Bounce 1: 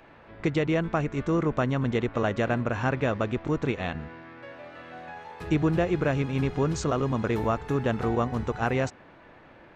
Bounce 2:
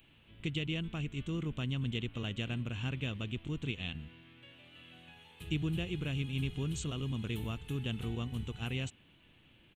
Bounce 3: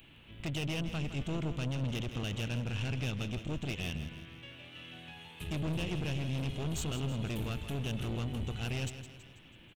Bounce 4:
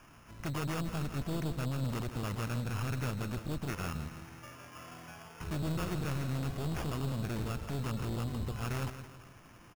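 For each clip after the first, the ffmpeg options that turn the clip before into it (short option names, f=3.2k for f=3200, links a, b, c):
-af "firequalizer=gain_entry='entry(120,0);entry(580,-17);entry(1800,-11);entry(3000,11);entry(5000,-10);entry(8900,11)':delay=0.05:min_phase=1,volume=-6dB"
-af "aeval=exprs='(tanh(100*val(0)+0.4)-tanh(0.4))/100':c=same,aecho=1:1:163|326|489|652|815:0.282|0.135|0.0649|0.0312|0.015,volume=7.5dB"
-af "acrusher=samples=11:mix=1:aa=0.000001"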